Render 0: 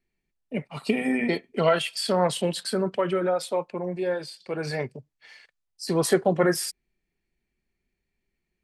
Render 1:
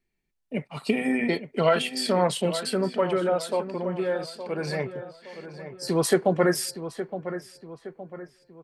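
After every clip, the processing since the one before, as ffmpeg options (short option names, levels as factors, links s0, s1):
-filter_complex "[0:a]asplit=2[s0][s1];[s1]adelay=866,lowpass=f=2700:p=1,volume=0.282,asplit=2[s2][s3];[s3]adelay=866,lowpass=f=2700:p=1,volume=0.44,asplit=2[s4][s5];[s5]adelay=866,lowpass=f=2700:p=1,volume=0.44,asplit=2[s6][s7];[s7]adelay=866,lowpass=f=2700:p=1,volume=0.44,asplit=2[s8][s9];[s9]adelay=866,lowpass=f=2700:p=1,volume=0.44[s10];[s0][s2][s4][s6][s8][s10]amix=inputs=6:normalize=0"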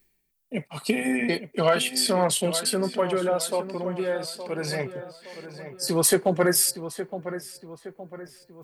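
-af "aemphasis=mode=production:type=50fm,areverse,acompressor=mode=upward:threshold=0.00708:ratio=2.5,areverse,volume=3.55,asoftclip=hard,volume=0.282"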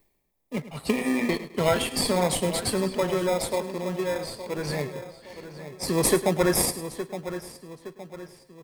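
-filter_complex "[0:a]asplit=2[s0][s1];[s1]acrusher=samples=30:mix=1:aa=0.000001,volume=0.668[s2];[s0][s2]amix=inputs=2:normalize=0,aecho=1:1:105|210|315:0.188|0.0584|0.0181,volume=0.631"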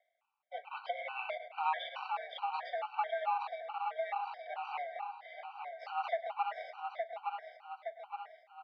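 -af "acompressor=threshold=0.0251:ratio=3,highpass=f=370:t=q:w=0.5412,highpass=f=370:t=q:w=1.307,lowpass=f=3000:t=q:w=0.5176,lowpass=f=3000:t=q:w=0.7071,lowpass=f=3000:t=q:w=1.932,afreqshift=280,afftfilt=real='re*gt(sin(2*PI*2.3*pts/sr)*(1-2*mod(floor(b*sr/1024/770),2)),0)':imag='im*gt(sin(2*PI*2.3*pts/sr)*(1-2*mod(floor(b*sr/1024/770),2)),0)':win_size=1024:overlap=0.75,volume=1.19"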